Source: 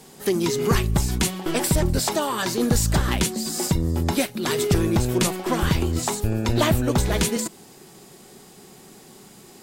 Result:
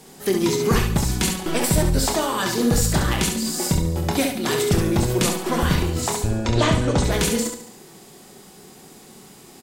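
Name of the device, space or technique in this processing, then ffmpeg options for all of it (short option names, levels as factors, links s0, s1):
slapback doubling: -filter_complex "[0:a]asettb=1/sr,asplit=3[s0][s1][s2];[s0]atrim=end=6.214[s3];[s1]atrim=start=6.21:end=7.04,asetpts=PTS-STARTPTS,afade=t=in:d=0.004:c=qsin,afade=t=out:st=0.826:d=0.004:c=qsin,lowpass=f=8300:w=0.5412,lowpass=f=8300:w=1.3066[s4];[s2]atrim=start=7.036[s5];[s3][s4]acrossfade=d=0.004:c1=hsin:c2=qsin[s6];[s6][s5]acrossfade=d=0.004:c1=qsin:c2=hsin,asplit=3[s7][s8][s9];[s8]adelay=26,volume=0.398[s10];[s9]adelay=67,volume=0.501[s11];[s7][s10][s11]amix=inputs=3:normalize=0,aecho=1:1:71|142|213|284|355:0.282|0.144|0.0733|0.0374|0.0191"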